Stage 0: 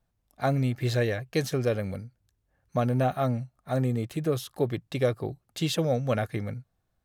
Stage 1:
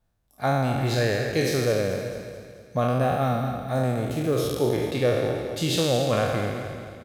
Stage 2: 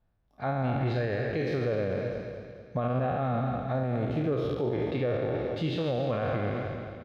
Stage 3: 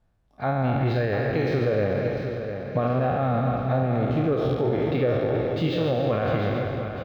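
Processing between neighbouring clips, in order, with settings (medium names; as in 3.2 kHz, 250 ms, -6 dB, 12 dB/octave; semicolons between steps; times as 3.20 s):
spectral sustain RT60 1.55 s; feedback delay 218 ms, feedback 51%, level -10.5 dB
dynamic bell 6.1 kHz, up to -5 dB, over -48 dBFS, Q 1.4; peak limiter -20 dBFS, peak gain reduction 8.5 dB; distance through air 270 m
feedback delay 700 ms, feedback 47%, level -9 dB; decimation joined by straight lines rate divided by 2×; trim +5 dB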